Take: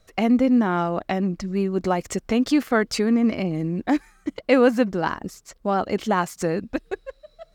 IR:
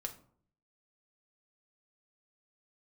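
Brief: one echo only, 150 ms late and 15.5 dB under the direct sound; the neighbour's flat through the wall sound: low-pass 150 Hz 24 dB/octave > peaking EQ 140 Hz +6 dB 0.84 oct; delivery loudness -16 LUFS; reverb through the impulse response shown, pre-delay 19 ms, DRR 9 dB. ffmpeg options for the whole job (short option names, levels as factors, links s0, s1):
-filter_complex "[0:a]aecho=1:1:150:0.168,asplit=2[s0][s1];[1:a]atrim=start_sample=2205,adelay=19[s2];[s1][s2]afir=irnorm=-1:irlink=0,volume=0.422[s3];[s0][s3]amix=inputs=2:normalize=0,lowpass=f=150:w=0.5412,lowpass=f=150:w=1.3066,equalizer=f=140:t=o:w=0.84:g=6,volume=8.41"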